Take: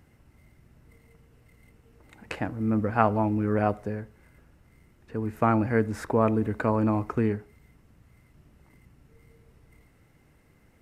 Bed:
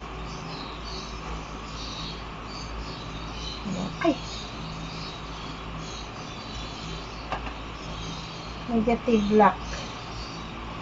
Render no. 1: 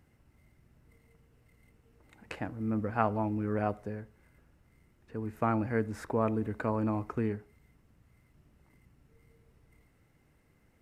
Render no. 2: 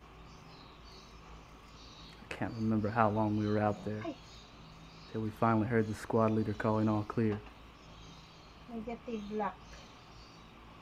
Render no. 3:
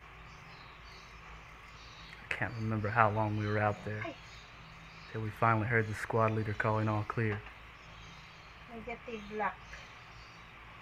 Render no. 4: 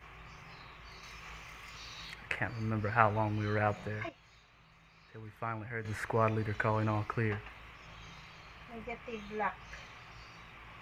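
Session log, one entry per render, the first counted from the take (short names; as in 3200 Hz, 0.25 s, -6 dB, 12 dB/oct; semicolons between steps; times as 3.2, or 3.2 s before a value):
gain -6.5 dB
add bed -18 dB
ten-band EQ 125 Hz +4 dB, 250 Hz -9 dB, 2000 Hz +12 dB, 4000 Hz -3 dB
1.03–2.14 high shelf 2600 Hz +9.5 dB; 4.09–5.85 gain -10 dB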